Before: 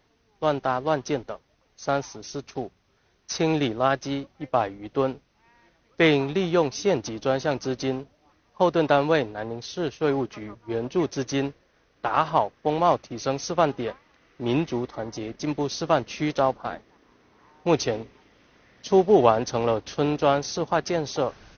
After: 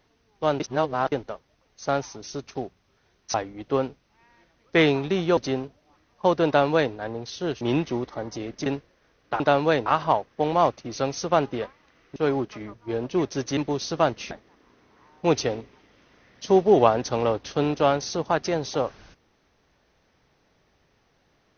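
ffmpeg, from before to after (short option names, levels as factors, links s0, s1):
-filter_complex "[0:a]asplit=12[s0][s1][s2][s3][s4][s5][s6][s7][s8][s9][s10][s11];[s0]atrim=end=0.602[s12];[s1]atrim=start=0.598:end=1.122,asetpts=PTS-STARTPTS,areverse[s13];[s2]atrim=start=1.118:end=3.342[s14];[s3]atrim=start=4.588:end=6.622[s15];[s4]atrim=start=7.728:end=9.972[s16];[s5]atrim=start=14.418:end=15.472[s17];[s6]atrim=start=11.378:end=12.122[s18];[s7]atrim=start=8.828:end=9.292[s19];[s8]atrim=start=12.118:end=14.422[s20];[s9]atrim=start=9.968:end=11.382[s21];[s10]atrim=start=15.468:end=16.212[s22];[s11]atrim=start=16.728[s23];[s12][s13]acrossfade=d=0.004:c1=hsin:c2=hsin[s24];[s24][s14]acrossfade=d=0.004:c1=hsin:c2=hsin[s25];[s25][s15]acrossfade=d=0.004:c1=hsin:c2=hsin[s26];[s26][s16]acrossfade=d=0.004:c1=hsin:c2=hsin[s27];[s27][s17]acrossfade=d=0.004:c1=hsin:c2=hsin[s28];[s28][s18]acrossfade=d=0.004:c1=hsin:c2=hsin[s29];[s29][s19]acrossfade=d=0.004:c1=hsin:c2=hsin[s30];[s30][s20]acrossfade=d=0.004:c1=hsin:c2=hsin[s31];[s31][s21]acrossfade=d=0.004:c1=hsin:c2=hsin[s32];[s32][s22]acrossfade=d=0.004:c1=hsin:c2=hsin[s33];[s33][s23]acrossfade=d=0.004:c1=hsin:c2=hsin"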